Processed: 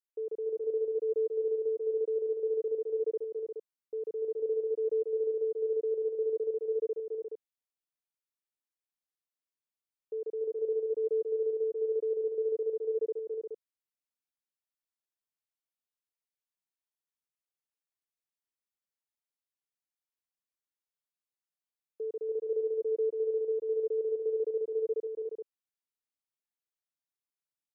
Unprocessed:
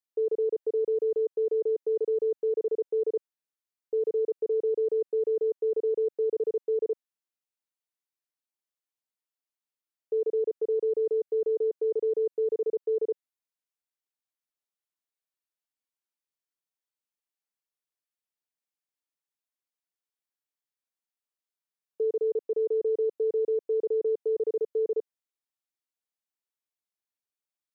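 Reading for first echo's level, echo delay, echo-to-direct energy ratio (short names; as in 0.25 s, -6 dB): -3.0 dB, 0.29 s, 0.0 dB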